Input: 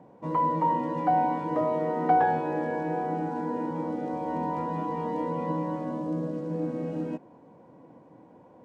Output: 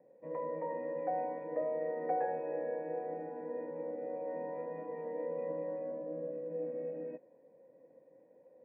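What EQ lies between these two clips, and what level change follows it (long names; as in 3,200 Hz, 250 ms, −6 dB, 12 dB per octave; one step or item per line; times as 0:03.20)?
high-pass filter 120 Hz
dynamic equaliser 780 Hz, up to +4 dB, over −39 dBFS, Q 1.4
formant resonators in series e
0.0 dB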